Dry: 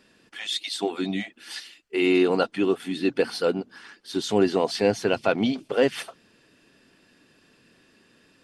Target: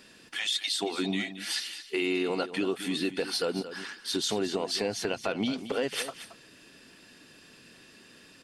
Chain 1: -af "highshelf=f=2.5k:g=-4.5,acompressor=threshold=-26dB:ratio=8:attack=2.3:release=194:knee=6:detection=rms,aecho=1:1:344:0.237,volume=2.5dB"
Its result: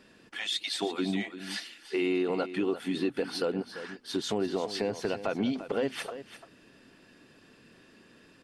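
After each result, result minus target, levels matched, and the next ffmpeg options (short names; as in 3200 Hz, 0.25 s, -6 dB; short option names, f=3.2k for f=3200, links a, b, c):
echo 0.12 s late; 4000 Hz band -3.5 dB
-af "highshelf=f=2.5k:g=-4.5,acompressor=threshold=-26dB:ratio=8:attack=2.3:release=194:knee=6:detection=rms,aecho=1:1:224:0.237,volume=2.5dB"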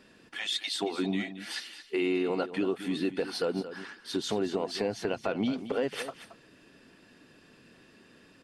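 4000 Hz band -3.5 dB
-af "highshelf=f=2.5k:g=7,acompressor=threshold=-26dB:ratio=8:attack=2.3:release=194:knee=6:detection=rms,aecho=1:1:224:0.237,volume=2.5dB"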